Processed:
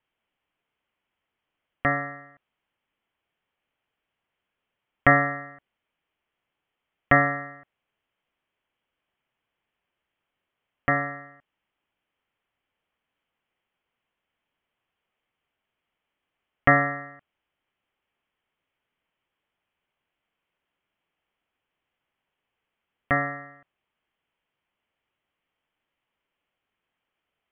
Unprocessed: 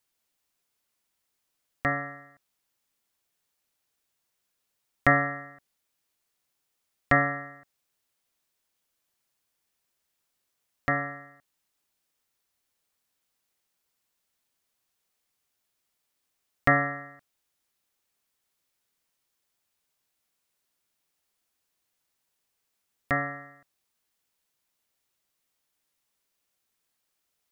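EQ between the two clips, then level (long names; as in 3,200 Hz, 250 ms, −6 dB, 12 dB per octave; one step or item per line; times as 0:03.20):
Chebyshev low-pass filter 3,200 Hz, order 6
+4.0 dB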